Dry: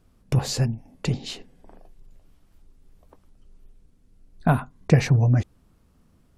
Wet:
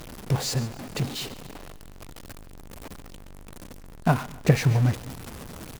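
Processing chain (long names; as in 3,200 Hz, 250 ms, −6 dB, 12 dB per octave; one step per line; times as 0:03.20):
converter with a step at zero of −23 dBFS
low-shelf EQ 93 Hz −5.5 dB
tempo change 1.1×
on a send: echo with a time of its own for lows and highs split 320 Hz, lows 216 ms, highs 140 ms, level −15.5 dB
on the sum: expander for the loud parts 1.5 to 1, over −32 dBFS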